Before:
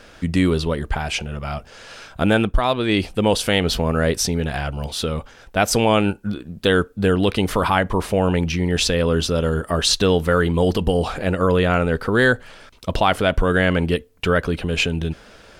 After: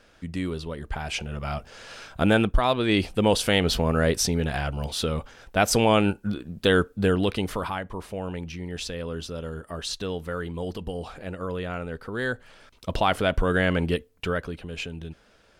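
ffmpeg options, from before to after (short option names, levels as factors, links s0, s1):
-af "volume=2,afade=t=in:st=0.72:d=0.76:silence=0.354813,afade=t=out:st=6.93:d=0.87:silence=0.281838,afade=t=in:st=12.15:d=0.89:silence=0.354813,afade=t=out:st=13.97:d=0.61:silence=0.375837"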